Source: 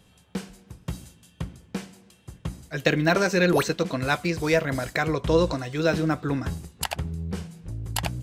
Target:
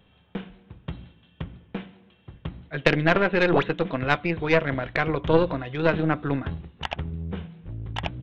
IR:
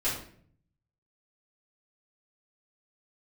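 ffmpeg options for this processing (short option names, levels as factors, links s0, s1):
-af "bandreject=f=60:t=h:w=6,bandreject=f=120:t=h:w=6,bandreject=f=180:t=h:w=6,bandreject=f=240:t=h:w=6,bandreject=f=300:t=h:w=6,aresample=8000,aresample=44100,aeval=exprs='0.531*(cos(1*acos(clip(val(0)/0.531,-1,1)))-cos(1*PI/2))+0.0668*(cos(3*acos(clip(val(0)/0.531,-1,1)))-cos(3*PI/2))+0.0596*(cos(4*acos(clip(val(0)/0.531,-1,1)))-cos(4*PI/2))':c=same,volume=1.5"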